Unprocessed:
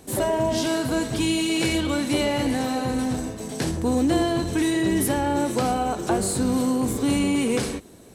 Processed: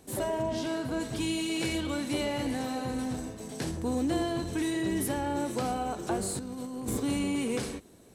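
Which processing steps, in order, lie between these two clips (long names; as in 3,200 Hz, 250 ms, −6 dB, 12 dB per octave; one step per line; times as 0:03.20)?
0:00.41–0:00.99: high-shelf EQ 6,400 Hz → 3,900 Hz −9 dB
0:06.39–0:07.00: compressor whose output falls as the input rises −26 dBFS, ratio −0.5
level −8 dB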